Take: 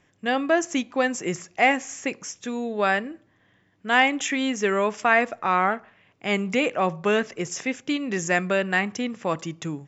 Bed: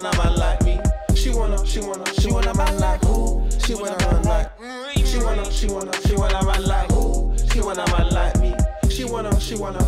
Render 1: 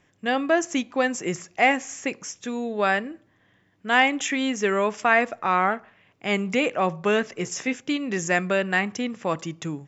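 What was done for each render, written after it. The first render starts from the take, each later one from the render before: 7.34–7.79 s: doubling 16 ms -7.5 dB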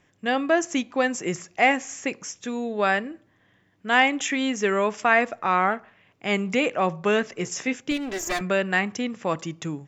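7.91–8.41 s: comb filter that takes the minimum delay 3 ms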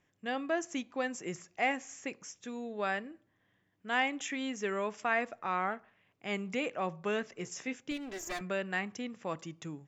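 trim -11.5 dB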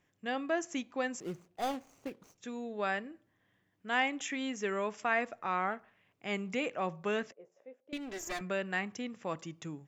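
1.20–2.38 s: median filter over 25 samples; 7.32–7.93 s: band-pass filter 560 Hz, Q 6.9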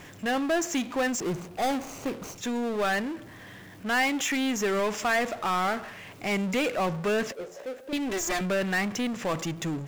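power-law waveshaper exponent 0.5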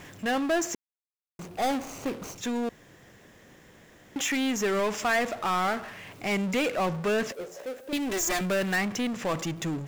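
0.75–1.39 s: mute; 2.69–4.16 s: room tone; 7.31–8.76 s: treble shelf 7.4 kHz +7 dB

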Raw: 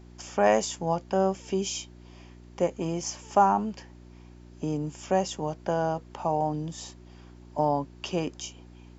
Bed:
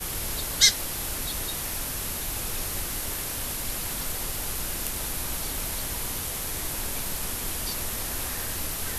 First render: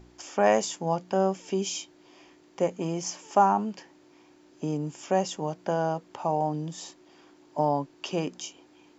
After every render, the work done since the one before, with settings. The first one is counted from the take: de-hum 60 Hz, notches 4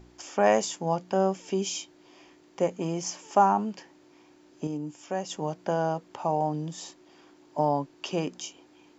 4.67–5.30 s: feedback comb 100 Hz, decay 0.18 s, harmonics odd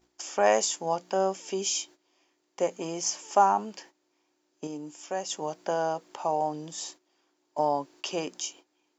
gate -50 dBFS, range -15 dB; tone controls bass -13 dB, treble +6 dB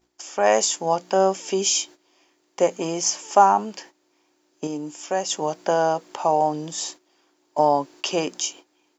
level rider gain up to 8 dB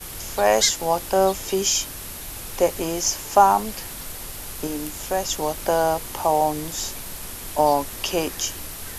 add bed -3.5 dB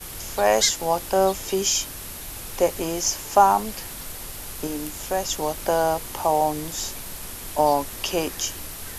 trim -1 dB

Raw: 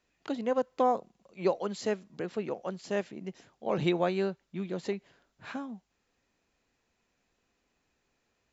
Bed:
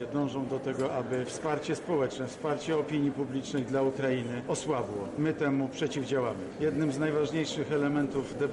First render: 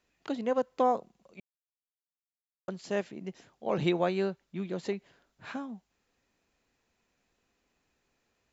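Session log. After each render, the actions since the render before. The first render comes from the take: 1.40–2.68 s: mute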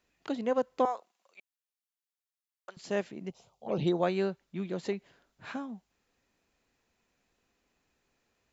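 0.85–2.77 s: high-pass 960 Hz; 3.30–4.03 s: touch-sensitive phaser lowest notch 270 Hz, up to 2.5 kHz, full sweep at -24 dBFS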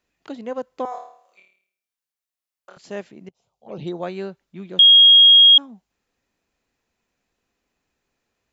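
0.89–2.78 s: flutter echo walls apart 4.6 m, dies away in 0.58 s; 3.29–4.20 s: fade in equal-power, from -18.5 dB; 4.79–5.58 s: bleep 3.27 kHz -6.5 dBFS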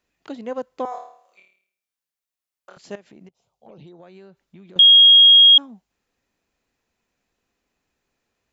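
2.95–4.76 s: compression 10:1, threshold -41 dBFS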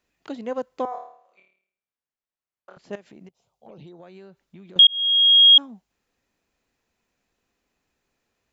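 0.85–2.93 s: low-pass 1.5 kHz 6 dB/octave; 4.87–5.61 s: fade in linear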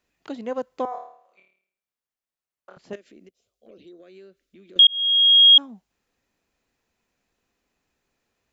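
2.93–4.86 s: static phaser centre 360 Hz, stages 4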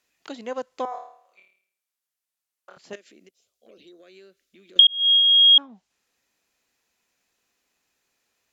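low-pass that closes with the level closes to 2.5 kHz, closed at -14.5 dBFS; tilt EQ +2.5 dB/octave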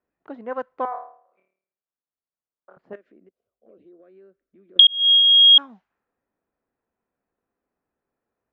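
level-controlled noise filter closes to 580 Hz, open at -16 dBFS; peaking EQ 1.5 kHz +8.5 dB 1.4 oct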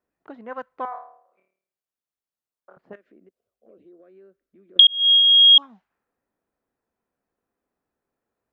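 5.09–5.62 s: time-frequency box 1.3–2.7 kHz -29 dB; dynamic bell 410 Hz, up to -7 dB, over -41 dBFS, Q 0.7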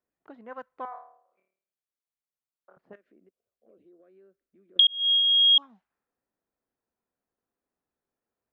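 trim -7 dB

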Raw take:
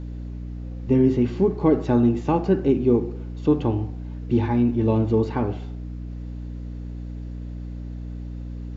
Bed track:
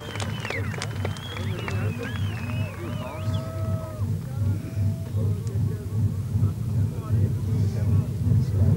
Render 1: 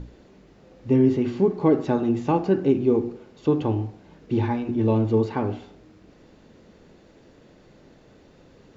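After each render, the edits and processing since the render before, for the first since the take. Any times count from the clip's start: hum notches 60/120/180/240/300/360 Hz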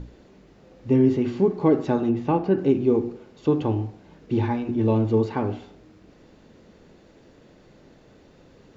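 2.10–2.58 s: distance through air 150 m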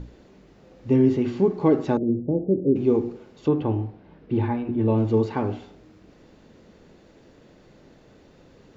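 1.97–2.76 s: elliptic low-pass 560 Hz, stop band 70 dB; 3.48–4.98 s: distance through air 250 m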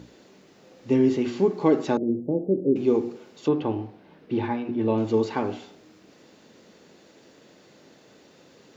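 Bessel high-pass 210 Hz, order 2; treble shelf 3.2 kHz +9.5 dB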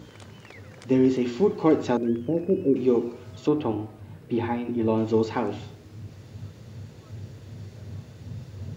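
add bed track -17 dB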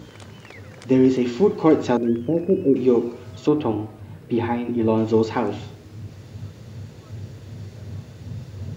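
trim +4 dB

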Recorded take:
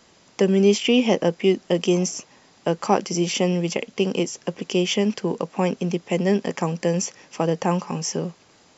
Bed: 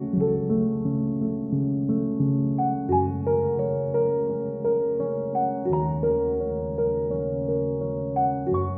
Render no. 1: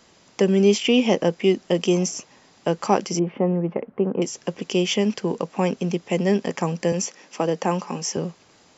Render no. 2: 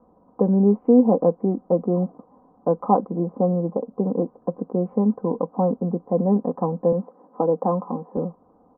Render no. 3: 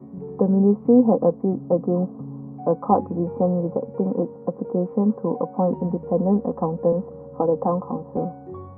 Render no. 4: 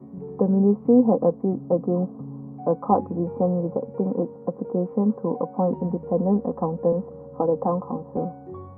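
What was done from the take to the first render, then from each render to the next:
3.19–4.22 s: low-pass 1.5 kHz 24 dB/octave; 6.92–8.17 s: high-pass 180 Hz 24 dB/octave
steep low-pass 1.1 kHz 48 dB/octave; comb 4 ms, depth 62%
add bed -12.5 dB
trim -1.5 dB

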